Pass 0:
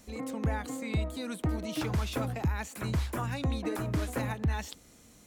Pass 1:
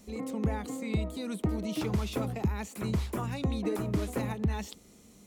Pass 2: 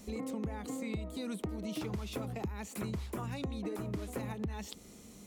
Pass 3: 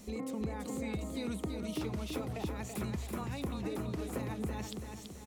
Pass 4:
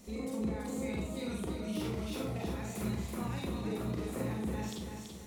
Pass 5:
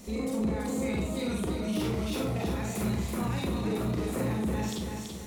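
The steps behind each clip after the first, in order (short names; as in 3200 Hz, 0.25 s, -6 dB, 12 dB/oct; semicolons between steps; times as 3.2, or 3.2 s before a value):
thirty-one-band EQ 200 Hz +9 dB, 400 Hz +8 dB, 1600 Hz -6 dB; gain -1.5 dB
compressor 5:1, threshold -39 dBFS, peak gain reduction 14 dB; gain +3 dB
feedback echo 0.332 s, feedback 45%, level -6 dB
Schroeder reverb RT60 0.48 s, combs from 33 ms, DRR -2 dB; gain -3.5 dB
soft clip -29 dBFS, distortion -20 dB; gain +7.5 dB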